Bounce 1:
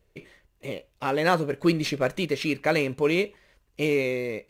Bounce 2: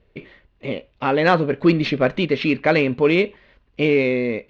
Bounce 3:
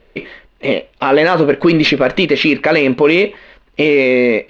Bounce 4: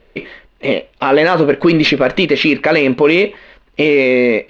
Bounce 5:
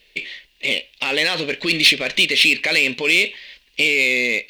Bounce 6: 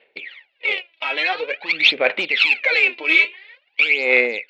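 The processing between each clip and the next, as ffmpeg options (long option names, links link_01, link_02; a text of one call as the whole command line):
ffmpeg -i in.wav -af "lowpass=frequency=3900:width=0.5412,lowpass=frequency=3900:width=1.3066,equalizer=frequency=240:width_type=o:width=0.22:gain=8.5,acontrast=70" out.wav
ffmpeg -i in.wav -af "equalizer=frequency=90:width_type=o:width=1.9:gain=-14.5,alimiter=level_in=14.5dB:limit=-1dB:release=50:level=0:latency=1,volume=-1dB" out.wav
ffmpeg -i in.wav -af anull out.wav
ffmpeg -i in.wav -af "aexciter=amount=7.1:drive=9:freq=2000,volume=-14.5dB" out.wav
ffmpeg -i in.wav -af "adynamicsmooth=sensitivity=0.5:basefreq=2400,aphaser=in_gain=1:out_gain=1:delay=3.1:decay=0.78:speed=0.48:type=sinusoidal,highpass=430,equalizer=frequency=520:width_type=q:width=4:gain=5,equalizer=frequency=810:width_type=q:width=4:gain=9,equalizer=frequency=1400:width_type=q:width=4:gain=7,equalizer=frequency=2300:width_type=q:width=4:gain=6,lowpass=frequency=4700:width=0.5412,lowpass=frequency=4700:width=1.3066,volume=-6.5dB" out.wav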